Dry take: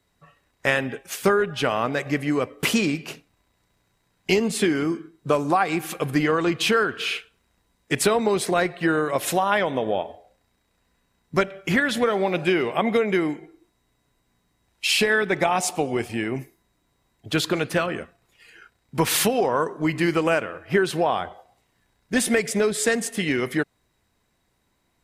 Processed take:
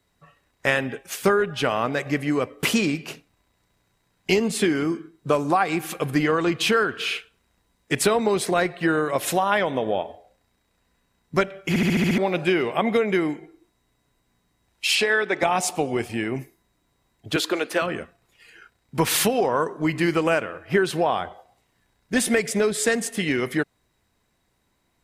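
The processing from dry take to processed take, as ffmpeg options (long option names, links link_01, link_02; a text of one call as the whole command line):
ffmpeg -i in.wav -filter_complex "[0:a]asettb=1/sr,asplit=3[link_01][link_02][link_03];[link_01]atrim=end=14.954[link_04];[link_02]atrim=start=14.95:end=15.43,asetpts=PTS-STARTPTS,afade=type=in:duration=0.004:curve=qsin,afade=type=out:start_time=0.476:duration=0.004:curve=qsin,highpass=310,lowpass=7900[link_05];[link_03]atrim=start=15.426[link_06];[link_04][link_05]acrossfade=duration=0.004:curve1=hsin:curve2=qsin[link_07];[link_07][link_06]acrossfade=duration=0.004:curve1=qsin:curve2=hsin,asettb=1/sr,asplit=3[link_08][link_09][link_10];[link_08]atrim=end=17.364[link_11];[link_09]atrim=start=17.36:end=17.82,asetpts=PTS-STARTPTS,afade=type=in:duration=0.004:curve=qsin,afade=type=out:start_time=0.456:duration=0.004:curve=qsin,highpass=frequency=270:width=0.5412,highpass=frequency=270:width=1.3066[link_12];[link_10]atrim=start=17.816[link_13];[link_11][link_12]acrossfade=duration=0.004:curve1=hsin:curve2=qsin[link_14];[link_14][link_13]acrossfade=duration=0.004:curve1=qsin:curve2=hsin,asplit=8[link_15][link_16][link_17][link_18][link_19][link_20][link_21][link_22];[link_15]atrim=end=11.762[link_23];[link_16]atrim=start=11.688:end=11.762[link_24];[link_17]atrim=start=11.688:end=11.762[link_25];[link_18]atrim=start=11.688:end=11.762[link_26];[link_19]atrim=start=11.688:end=11.762[link_27];[link_20]atrim=start=11.688:end=11.762[link_28];[link_21]atrim=start=11.688:end=11.762[link_29];[link_22]atrim=start=12.178[link_30];[link_23][link_24]acrossfade=duration=0.004:curve1=hsin:curve2=hsin[link_31];[link_31][link_25]acrossfade=duration=0.004:curve1=hsin:curve2=hsin[link_32];[link_32][link_26]acrossfade=duration=0.004:curve1=hsin:curve2=hsin[link_33];[link_33][link_27]acrossfade=duration=0.004:curve1=hsin:curve2=hsin[link_34];[link_34][link_28]acrossfade=duration=0.004:curve1=hsin:curve2=hsin[link_35];[link_35][link_29]acrossfade=duration=0.004:curve1=hsin:curve2=hsin[link_36];[link_36][link_30]acrossfade=duration=0.004:curve1=hsin:curve2=hsin" out.wav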